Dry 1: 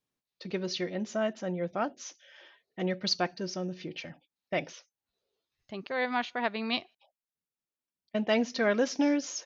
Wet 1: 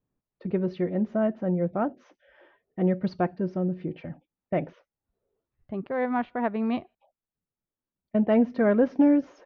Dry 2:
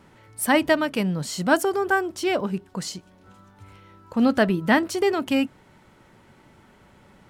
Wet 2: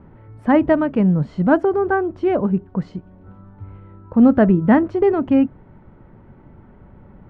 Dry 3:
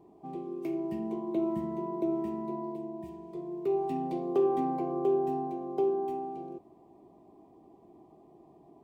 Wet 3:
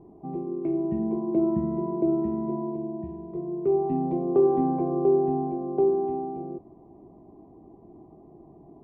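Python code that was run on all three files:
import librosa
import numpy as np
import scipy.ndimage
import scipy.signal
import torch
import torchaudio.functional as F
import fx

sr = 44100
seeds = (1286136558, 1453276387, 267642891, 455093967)

y = scipy.signal.sosfilt(scipy.signal.butter(2, 1700.0, 'lowpass', fs=sr, output='sos'), x)
y = fx.tilt_eq(y, sr, slope=-3.0)
y = y * librosa.db_to_amplitude(2.0)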